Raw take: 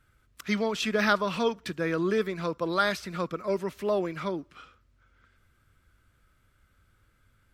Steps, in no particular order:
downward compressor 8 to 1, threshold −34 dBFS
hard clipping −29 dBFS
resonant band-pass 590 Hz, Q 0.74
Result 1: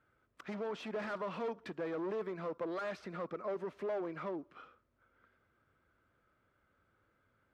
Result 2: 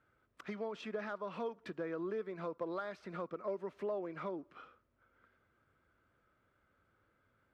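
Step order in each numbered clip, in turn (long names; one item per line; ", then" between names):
hard clipping, then downward compressor, then resonant band-pass
downward compressor, then hard clipping, then resonant band-pass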